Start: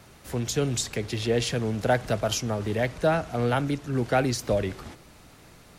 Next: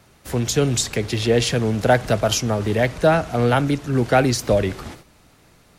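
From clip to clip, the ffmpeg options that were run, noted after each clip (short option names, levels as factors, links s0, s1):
-af "agate=range=0.355:threshold=0.00398:ratio=16:detection=peak,volume=2.24"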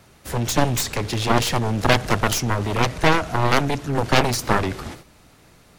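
-af "aeval=exprs='0.75*(cos(1*acos(clip(val(0)/0.75,-1,1)))-cos(1*PI/2))+0.15*(cos(6*acos(clip(val(0)/0.75,-1,1)))-cos(6*PI/2))+0.299*(cos(7*acos(clip(val(0)/0.75,-1,1)))-cos(7*PI/2))':c=same,volume=0.668"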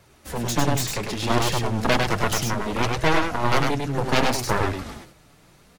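-af "aecho=1:1:101:0.668,flanger=delay=1.8:depth=5.4:regen=-42:speed=0.66:shape=triangular"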